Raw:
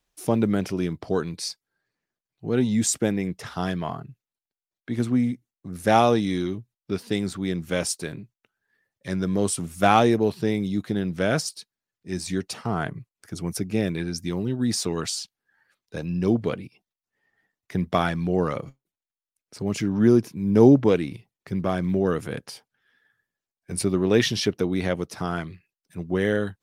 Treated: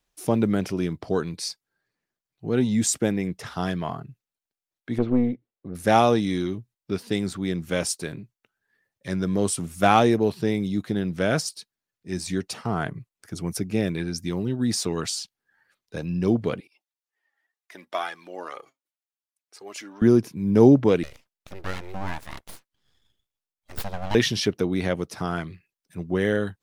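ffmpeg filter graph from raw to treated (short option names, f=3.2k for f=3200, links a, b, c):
-filter_complex "[0:a]asettb=1/sr,asplit=3[a][b][c];[a]atrim=end=4.984[d];[b]atrim=start=4.98:end=5.75,asetpts=PTS-STARTPTS,afade=t=in:d=0.004:c=qsin,afade=t=out:st=0.766:d=0.004:c=qsin,lowpass=f=3.8k:w=0.5412,lowpass=f=3.8k:w=1.3066,equalizer=f=480:w=1.1:g=12,aeval=exprs='(tanh(3.98*val(0)+0.65)-tanh(0.65))/3.98':c=same[e];[c]atrim=start=5.746[f];[d][e]acrossfade=d=0.004:c1=hsin:c2=qsin[g];[g][f]acrossfade=d=0.004:c1=qsin:c2=hsin,asettb=1/sr,asplit=3[h][i][j];[h]atrim=end=16.604[k];[i]atrim=start=16.6:end=20.02,asetpts=PTS-STARTPTS,afade=t=in:d=0.004:c=qsin,afade=t=out:st=3.416:d=0.004:c=qsin,highpass=660,flanger=delay=2.4:depth=1.2:regen=27:speed=2:shape=sinusoidal[l];[j]atrim=start=20.016[m];[k][l]acrossfade=d=0.004:c1=hsin:c2=qsin[n];[n][m]acrossfade=d=0.004:c1=qsin:c2=hsin,asettb=1/sr,asplit=3[o][p][q];[o]atrim=end=21.034[r];[p]atrim=start=21.03:end=24.15,asetpts=PTS-STARTPTS,afade=t=in:d=0.004:c=qsin,afade=t=out:st=3.116:d=0.004:c=qsin,highpass=f=640:p=1,aeval=exprs='abs(val(0))':c=same[s];[q]atrim=start=24.146[t];[r][s]acrossfade=d=0.004:c1=hsin:c2=qsin[u];[u][t]acrossfade=d=0.004:c1=qsin:c2=hsin"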